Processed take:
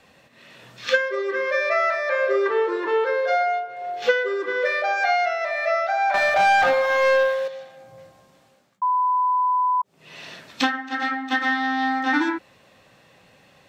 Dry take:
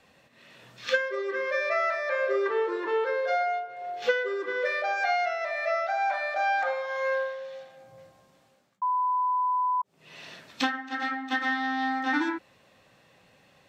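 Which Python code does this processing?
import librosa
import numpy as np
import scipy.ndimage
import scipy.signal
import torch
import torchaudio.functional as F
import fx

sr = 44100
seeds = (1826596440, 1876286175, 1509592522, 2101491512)

y = fx.leveller(x, sr, passes=2, at=(6.14, 7.48))
y = F.gain(torch.from_numpy(y), 5.5).numpy()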